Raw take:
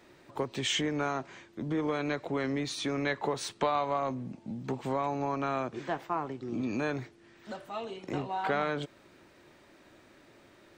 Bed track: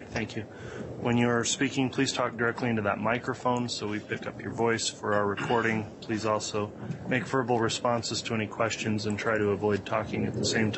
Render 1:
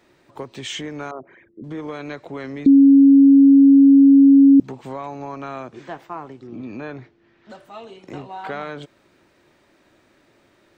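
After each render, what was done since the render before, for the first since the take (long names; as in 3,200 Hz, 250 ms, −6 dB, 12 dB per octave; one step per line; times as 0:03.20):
0:01.11–0:01.64: spectral envelope exaggerated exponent 3
0:02.66–0:04.60: beep over 276 Hz −6.5 dBFS
0:06.47–0:07.50: high-frequency loss of the air 170 metres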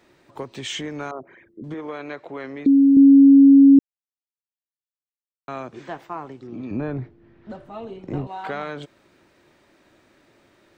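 0:01.74–0:02.97: bass and treble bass −9 dB, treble −10 dB
0:03.79–0:05.48: silence
0:06.71–0:08.27: spectral tilt −3.5 dB per octave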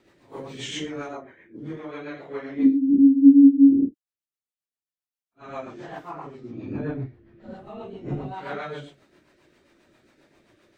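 random phases in long frames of 200 ms
rotating-speaker cabinet horn 7.5 Hz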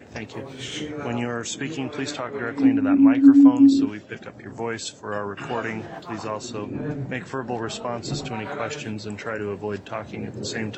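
mix in bed track −2.5 dB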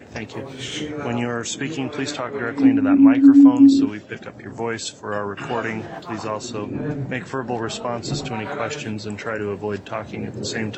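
level +3 dB
brickwall limiter −3 dBFS, peak gain reduction 2.5 dB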